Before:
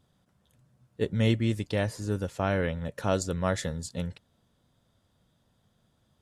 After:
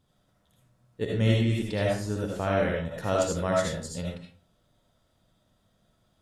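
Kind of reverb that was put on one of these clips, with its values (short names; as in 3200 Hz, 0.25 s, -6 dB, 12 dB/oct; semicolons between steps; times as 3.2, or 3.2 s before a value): digital reverb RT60 0.41 s, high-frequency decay 0.65×, pre-delay 35 ms, DRR -3 dB; gain -2.5 dB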